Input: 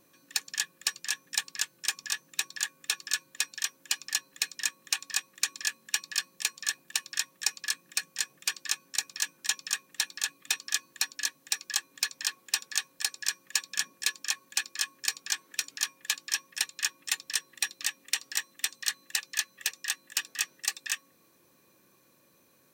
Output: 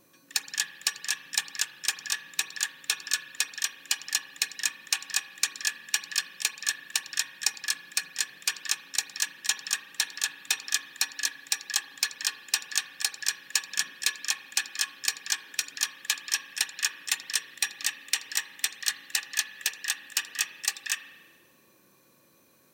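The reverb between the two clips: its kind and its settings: spring tank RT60 1.4 s, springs 36 ms, chirp 50 ms, DRR 10.5 dB; gain +2 dB

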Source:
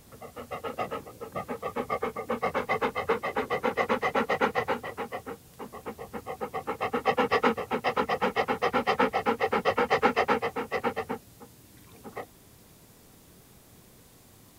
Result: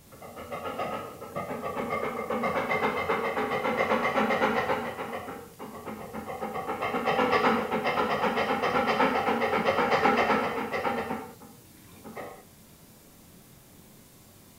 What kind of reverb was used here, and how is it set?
non-linear reverb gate 0.24 s falling, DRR 0 dB; gain -1.5 dB

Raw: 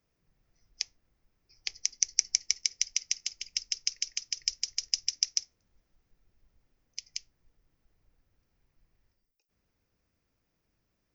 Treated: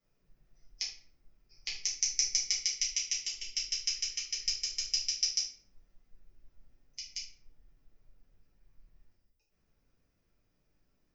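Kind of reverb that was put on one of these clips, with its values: shoebox room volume 54 m³, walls mixed, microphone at 1.6 m; gain -8 dB

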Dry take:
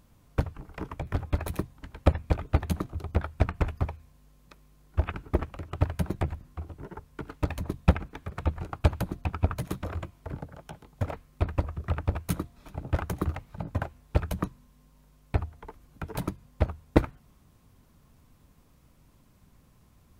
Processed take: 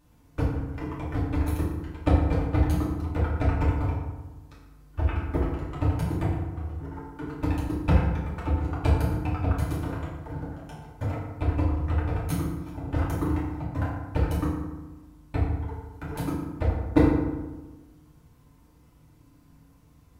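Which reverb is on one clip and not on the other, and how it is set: FDN reverb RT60 1.2 s, low-frequency decay 1.25×, high-frequency decay 0.55×, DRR -8 dB; gain -7 dB

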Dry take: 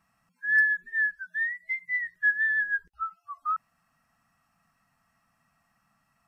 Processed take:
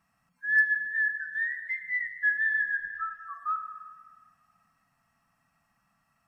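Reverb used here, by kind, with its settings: spring tank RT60 1.8 s, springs 50/57 ms, chirp 35 ms, DRR 7 dB; gain -2 dB

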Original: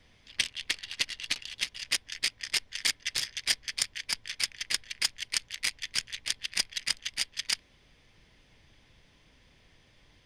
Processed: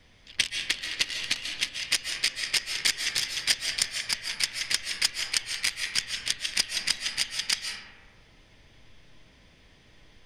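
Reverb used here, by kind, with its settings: digital reverb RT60 1.7 s, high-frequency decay 0.35×, pre-delay 0.105 s, DRR 3.5 dB; gain +3 dB

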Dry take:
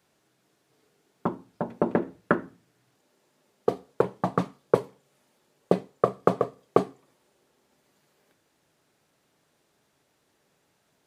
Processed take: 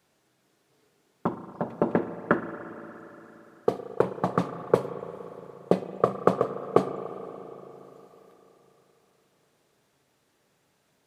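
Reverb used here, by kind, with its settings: spring tank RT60 3.9 s, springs 36/58 ms, chirp 60 ms, DRR 9 dB

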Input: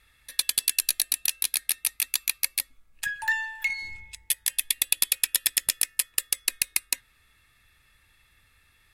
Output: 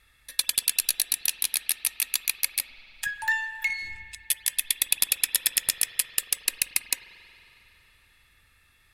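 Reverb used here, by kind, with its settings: spring tank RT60 3.5 s, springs 45 ms, chirp 65 ms, DRR 10.5 dB

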